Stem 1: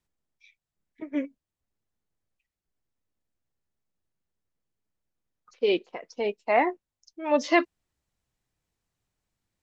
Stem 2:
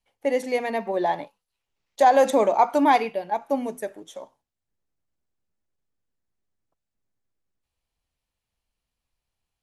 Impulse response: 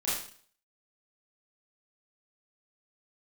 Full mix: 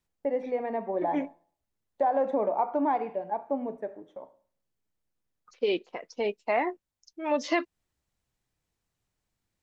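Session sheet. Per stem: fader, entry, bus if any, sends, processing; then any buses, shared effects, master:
0.0 dB, 0.00 s, no send, no processing
−4.5 dB, 0.00 s, send −20 dB, low-pass filter 1,200 Hz 12 dB per octave; noise gate with hold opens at −42 dBFS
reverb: on, RT60 0.50 s, pre-delay 26 ms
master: downward compressor 2.5 to 1, threshold −24 dBFS, peak gain reduction 7 dB

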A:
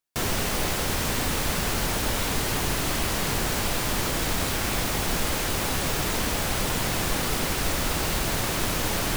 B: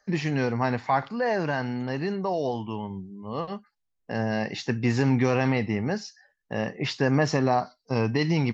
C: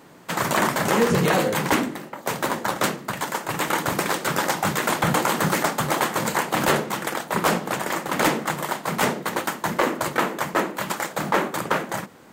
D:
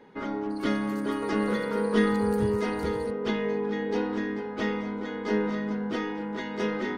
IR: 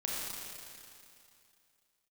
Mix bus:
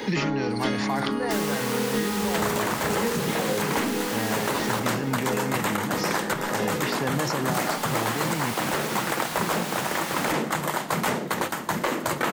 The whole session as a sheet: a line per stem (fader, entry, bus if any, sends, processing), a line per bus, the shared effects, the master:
−8.0 dB, 1.15 s, muted 0:04.80–0:07.54, send −10.5 dB, elliptic high-pass filter 750 Hz; pitch vibrato 3.7 Hz 26 cents
−8.0 dB, 0.00 s, no send, level that may fall only so fast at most 23 dB per second
0.0 dB, 2.05 s, no send, brickwall limiter −13.5 dBFS, peak gain reduction 4 dB; sample-and-hold tremolo
0.0 dB, 0.00 s, send −14.5 dB, automatic ducking −7 dB, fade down 1.90 s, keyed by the second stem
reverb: on, RT60 2.6 s, pre-delay 28 ms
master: multiband upward and downward compressor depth 100%

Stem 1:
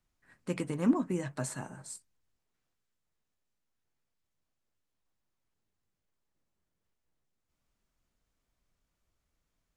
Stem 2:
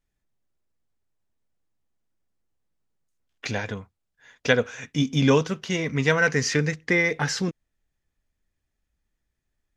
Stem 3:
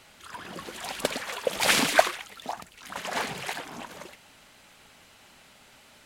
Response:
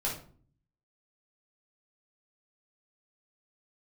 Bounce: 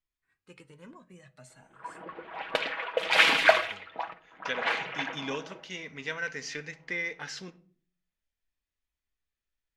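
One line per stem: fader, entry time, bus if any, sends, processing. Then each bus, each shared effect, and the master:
−15.0 dB, 0.00 s, send −20 dB, flanger whose copies keep moving one way rising 0.45 Hz
−18.5 dB, 0.00 s, send −15.5 dB, parametric band 120 Hz −14 dB 0.54 octaves; speech leveller 2 s
−4.0 dB, 1.50 s, send −14.5 dB, bass and treble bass −11 dB, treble −15 dB; low-pass that shuts in the quiet parts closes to 530 Hz, open at −25 dBFS; comb filter 6.2 ms, depth 50%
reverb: on, RT60 0.45 s, pre-delay 7 ms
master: parametric band 2,900 Hz +9 dB 2 octaves

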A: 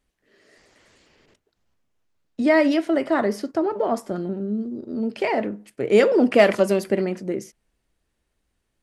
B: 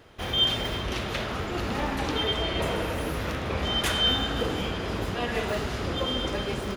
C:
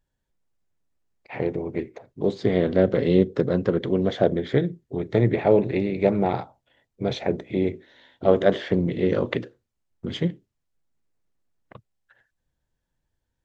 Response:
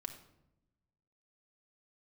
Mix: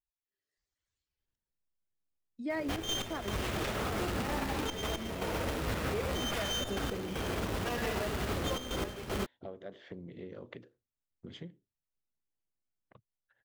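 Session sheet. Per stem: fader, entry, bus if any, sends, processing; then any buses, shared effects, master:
−15.0 dB, 0.00 s, no send, spectral dynamics exaggerated over time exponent 1.5
−1.0 dB, 2.50 s, no send, log-companded quantiser 4 bits; gate pattern "xx.x..xxxxxxxxx" 116 BPM −12 dB; windowed peak hold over 5 samples
−15.0 dB, 1.20 s, no send, downward compressor 6 to 1, threshold −27 dBFS, peak gain reduction 15 dB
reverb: not used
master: brickwall limiter −25 dBFS, peak gain reduction 12 dB

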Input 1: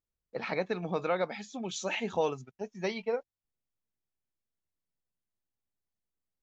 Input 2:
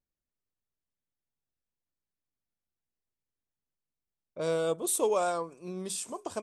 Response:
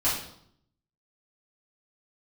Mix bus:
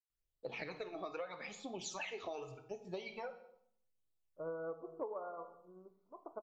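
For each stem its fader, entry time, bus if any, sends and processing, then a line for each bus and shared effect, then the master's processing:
−2.0 dB, 0.10 s, send −18 dB, parametric band 230 Hz −4 dB; all-pass phaser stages 12, 0.81 Hz, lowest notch 150–2,100 Hz
+2.0 dB, 0.00 s, send −19 dB, brick-wall band-pass 110–1,500 Hz; expander for the loud parts 2.5 to 1, over −43 dBFS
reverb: on, RT60 0.70 s, pre-delay 3 ms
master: parametric band 200 Hz −6.5 dB 0.69 octaves; downward compressor 8 to 1, threshold −40 dBFS, peak gain reduction 18 dB

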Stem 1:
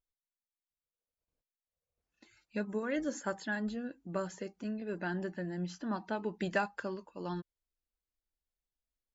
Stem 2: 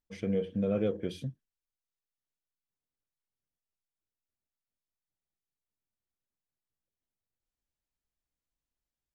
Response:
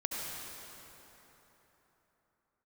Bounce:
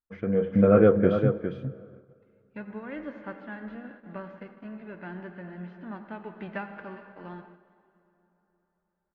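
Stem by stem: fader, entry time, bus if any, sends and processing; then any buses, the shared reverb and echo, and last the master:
−16.5 dB, 0.00 s, send −7 dB, echo send −16 dB, spectral envelope flattened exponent 0.6; low-pass filter 2,400 Hz 24 dB per octave
+1.0 dB, 0.00 s, send −20 dB, echo send −7.5 dB, low-pass with resonance 1,400 Hz, resonance Q 3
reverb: on, RT60 3.8 s, pre-delay 63 ms
echo: single-tap delay 407 ms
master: noise gate −58 dBFS, range −9 dB; automatic gain control gain up to 10 dB

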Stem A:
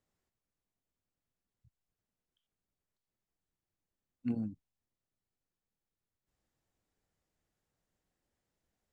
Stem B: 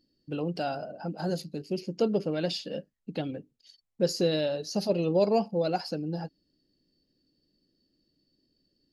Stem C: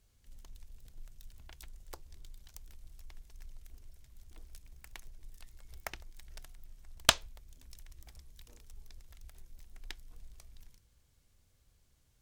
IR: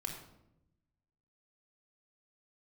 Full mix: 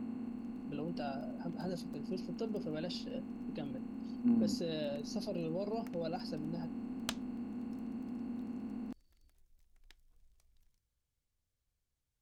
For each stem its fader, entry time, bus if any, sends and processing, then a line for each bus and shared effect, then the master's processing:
−3.5 dB, 0.00 s, no send, compressor on every frequency bin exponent 0.2; octave-band graphic EQ 125/250/500/1,000/2,000 Hz −10/+9/−4/+10/−7 dB
−10.5 dB, 0.40 s, no send, brickwall limiter −20.5 dBFS, peak gain reduction 8 dB
−16.5 dB, 0.00 s, no send, no processing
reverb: not used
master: no processing

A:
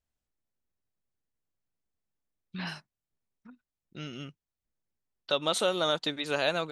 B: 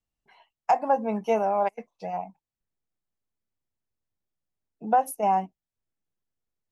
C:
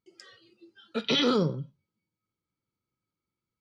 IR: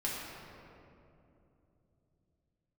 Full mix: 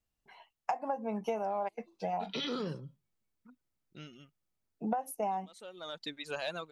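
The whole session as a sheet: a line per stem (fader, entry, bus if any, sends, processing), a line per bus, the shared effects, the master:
−6.5 dB, 0.00 s, no send, reverb reduction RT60 1.9 s; soft clipping −15 dBFS, distortion −24 dB; automatic ducking −18 dB, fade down 0.85 s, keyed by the second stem
+1.0 dB, 0.00 s, no send, no processing
−11.0 dB, 1.25 s, no send, no processing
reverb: not used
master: downward compressor 16 to 1, threshold −30 dBFS, peak gain reduction 15.5 dB

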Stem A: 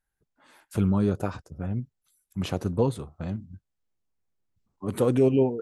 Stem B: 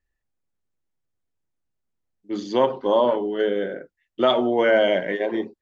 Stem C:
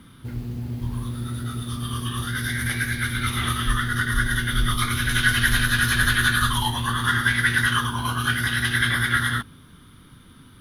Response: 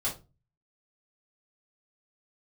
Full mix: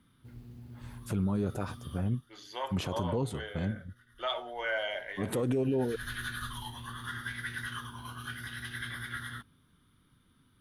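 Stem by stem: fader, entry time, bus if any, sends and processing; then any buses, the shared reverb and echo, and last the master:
−1.0 dB, 0.35 s, no send, no processing
−10.5 dB, 0.00 s, send −12 dB, high-pass filter 990 Hz 12 dB per octave
−18.0 dB, 0.00 s, no send, automatic ducking −22 dB, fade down 0.40 s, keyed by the second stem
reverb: on, RT60 0.30 s, pre-delay 3 ms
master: brickwall limiter −21.5 dBFS, peak gain reduction 9.5 dB

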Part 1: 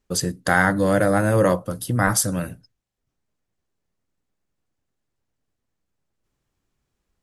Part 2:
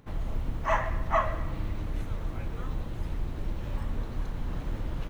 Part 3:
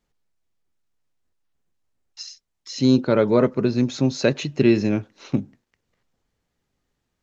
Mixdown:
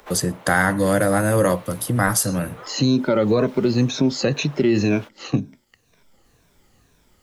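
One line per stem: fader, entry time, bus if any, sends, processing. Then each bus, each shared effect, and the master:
0.0 dB, 0.00 s, no bus, no send, high-shelf EQ 7,500 Hz +8 dB
+0.5 dB, 0.00 s, bus A, no send, high-pass filter 440 Hz 24 dB per octave; downward compressor, threshold −36 dBFS, peak gain reduction 14.5 dB
+2.0 dB, 0.00 s, bus A, no send, rippled gain that drifts along the octave scale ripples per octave 1.6, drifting −2 Hz, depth 13 dB
bus A: 0.0 dB, brickwall limiter −9 dBFS, peak gain reduction 8.5 dB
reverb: not used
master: multiband upward and downward compressor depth 40%

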